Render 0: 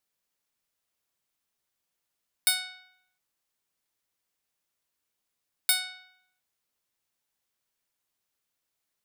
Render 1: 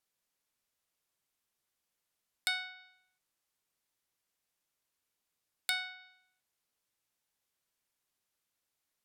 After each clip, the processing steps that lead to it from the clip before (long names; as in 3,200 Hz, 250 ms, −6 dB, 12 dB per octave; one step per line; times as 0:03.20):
treble cut that deepens with the level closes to 2,900 Hz, closed at −32 dBFS
level −1.5 dB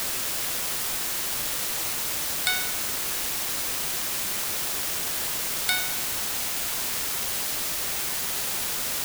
bit-depth reduction 6 bits, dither triangular
level +7.5 dB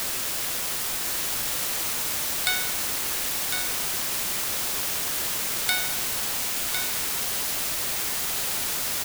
single-tap delay 1,054 ms −6.5 dB